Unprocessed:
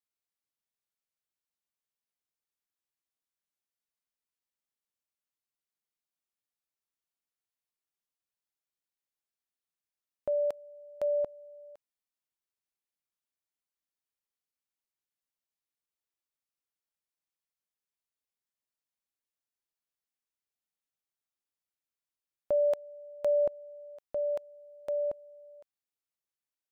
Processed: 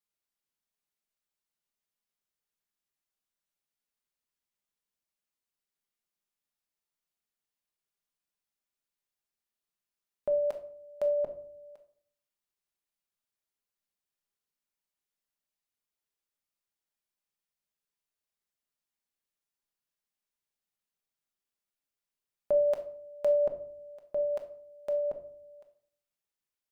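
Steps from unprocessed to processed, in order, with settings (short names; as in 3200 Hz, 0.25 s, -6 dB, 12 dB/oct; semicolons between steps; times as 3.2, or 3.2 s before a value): shoebox room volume 670 m³, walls furnished, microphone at 1.3 m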